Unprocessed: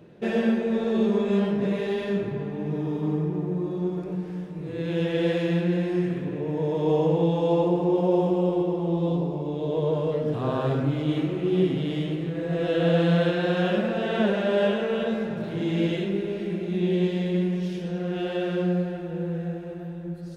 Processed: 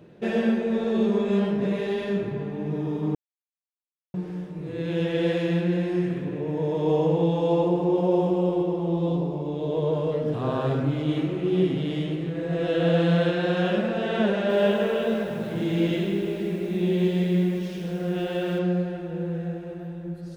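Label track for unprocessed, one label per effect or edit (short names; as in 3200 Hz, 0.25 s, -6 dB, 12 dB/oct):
3.150000	4.140000	mute
14.340000	18.590000	lo-fi delay 0.157 s, feedback 55%, word length 8-bit, level -8 dB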